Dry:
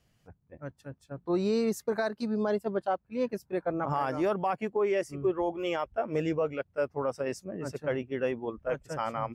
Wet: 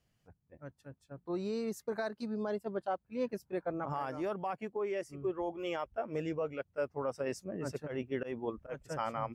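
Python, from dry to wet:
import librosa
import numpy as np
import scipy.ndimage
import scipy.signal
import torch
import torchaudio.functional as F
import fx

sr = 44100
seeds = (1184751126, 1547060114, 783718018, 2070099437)

y = fx.auto_swell(x, sr, attack_ms=139.0, at=(7.86, 8.83), fade=0.02)
y = fx.rider(y, sr, range_db=4, speed_s=0.5)
y = y * librosa.db_to_amplitude(-6.0)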